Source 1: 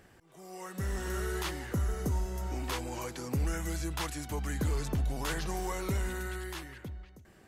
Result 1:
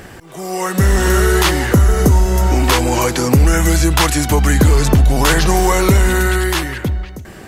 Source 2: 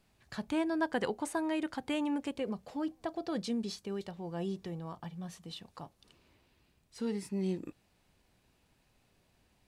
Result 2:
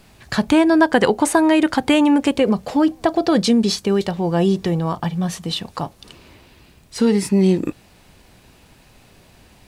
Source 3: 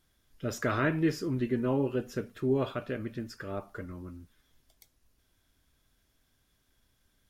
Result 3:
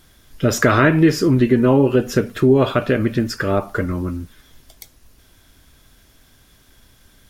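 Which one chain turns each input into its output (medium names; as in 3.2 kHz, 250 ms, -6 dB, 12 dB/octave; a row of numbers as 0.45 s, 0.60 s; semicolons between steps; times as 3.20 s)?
compression 2:1, threshold -33 dBFS; peak normalisation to -1.5 dBFS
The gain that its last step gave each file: +23.5 dB, +21.0 dB, +19.5 dB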